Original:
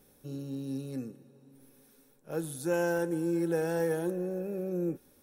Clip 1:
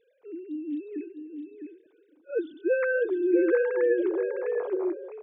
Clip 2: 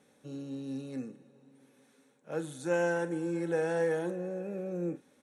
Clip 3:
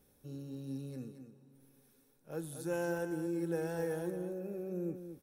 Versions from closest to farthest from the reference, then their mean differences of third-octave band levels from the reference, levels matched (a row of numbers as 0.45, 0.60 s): 3, 2, 1; 2.0, 3.5, 14.0 dB